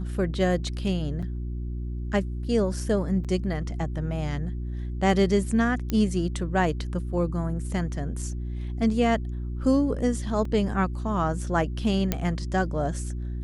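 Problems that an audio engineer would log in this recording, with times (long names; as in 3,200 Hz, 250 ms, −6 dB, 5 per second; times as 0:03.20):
mains hum 60 Hz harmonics 6 −31 dBFS
0:01.22–0:01.23: drop-out 6.1 ms
0:03.24–0:03.25: drop-out 6.8 ms
0:05.90: click −14 dBFS
0:10.45: drop-out 3.3 ms
0:12.12: click −9 dBFS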